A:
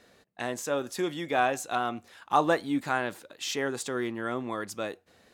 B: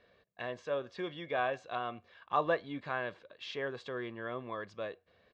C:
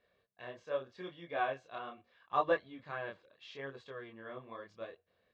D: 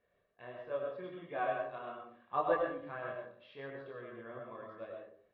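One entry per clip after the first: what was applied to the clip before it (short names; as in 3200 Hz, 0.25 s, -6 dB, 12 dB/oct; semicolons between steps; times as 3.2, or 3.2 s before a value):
LPF 3900 Hz 24 dB/oct; comb 1.8 ms, depth 49%; gain -7.5 dB
chorus voices 2, 0.8 Hz, delay 26 ms, depth 4.6 ms; upward expander 1.5:1, over -45 dBFS; gain +3 dB
air absorption 380 m; reverb RT60 0.55 s, pre-delay 60 ms, DRR 1 dB; gain -1 dB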